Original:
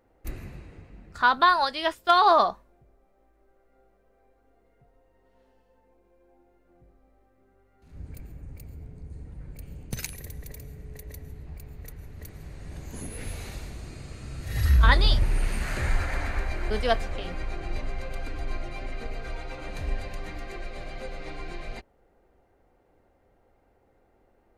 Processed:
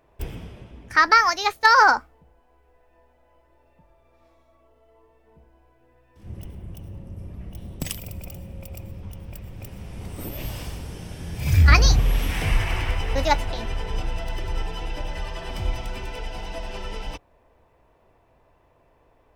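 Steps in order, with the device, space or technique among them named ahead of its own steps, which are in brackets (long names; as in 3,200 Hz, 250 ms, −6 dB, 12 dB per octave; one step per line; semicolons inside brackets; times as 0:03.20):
nightcore (speed change +27%)
level +4 dB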